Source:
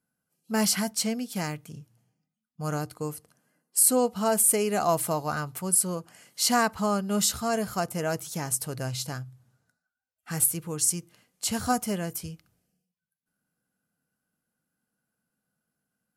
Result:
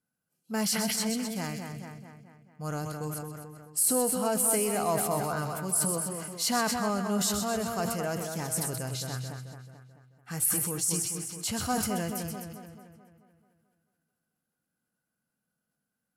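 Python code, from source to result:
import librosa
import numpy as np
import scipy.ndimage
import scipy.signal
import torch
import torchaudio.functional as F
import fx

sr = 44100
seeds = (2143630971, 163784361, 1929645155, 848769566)

p1 = 10.0 ** (-22.0 / 20.0) * np.tanh(x / 10.0 ** (-22.0 / 20.0))
p2 = x + (p1 * 10.0 ** (-6.0 / 20.0))
p3 = fx.echo_split(p2, sr, split_hz=2300.0, low_ms=218, high_ms=128, feedback_pct=52, wet_db=-6.5)
p4 = fx.sustainer(p3, sr, db_per_s=28.0)
y = p4 * 10.0 ** (-7.5 / 20.0)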